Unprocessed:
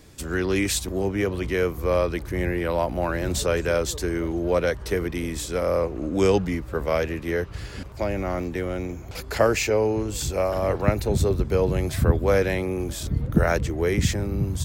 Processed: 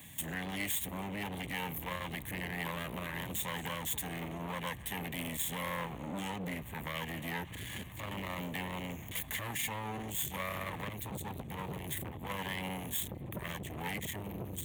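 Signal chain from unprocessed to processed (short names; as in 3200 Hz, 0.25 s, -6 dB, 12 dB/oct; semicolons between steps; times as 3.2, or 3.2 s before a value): minimum comb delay 0.6 ms; bell 600 Hz -9 dB 1.6 oct; compressor 6:1, threshold -28 dBFS, peak gain reduction 14.5 dB; high shelf 12000 Hz +8.5 dB; limiter -27 dBFS, peak gain reduction 9 dB; HPF 180 Hz 12 dB/oct; fixed phaser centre 1400 Hz, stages 6; core saturation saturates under 1100 Hz; gain +7 dB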